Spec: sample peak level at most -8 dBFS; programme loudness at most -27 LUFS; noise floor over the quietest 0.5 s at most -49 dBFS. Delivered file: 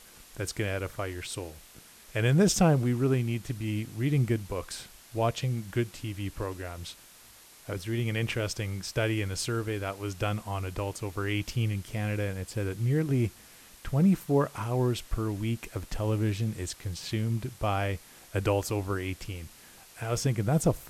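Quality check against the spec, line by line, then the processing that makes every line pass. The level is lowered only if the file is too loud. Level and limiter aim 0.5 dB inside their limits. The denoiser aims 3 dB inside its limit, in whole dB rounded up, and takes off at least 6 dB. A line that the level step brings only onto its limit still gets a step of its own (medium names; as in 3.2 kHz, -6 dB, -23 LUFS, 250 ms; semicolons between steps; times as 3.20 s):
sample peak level -10.5 dBFS: pass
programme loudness -30.5 LUFS: pass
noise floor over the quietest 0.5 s -54 dBFS: pass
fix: none needed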